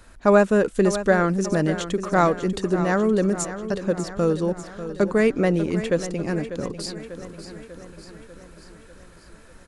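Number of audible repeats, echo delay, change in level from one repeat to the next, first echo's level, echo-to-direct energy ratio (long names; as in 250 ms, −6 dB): 6, 594 ms, −4.5 dB, −12.0 dB, −10.0 dB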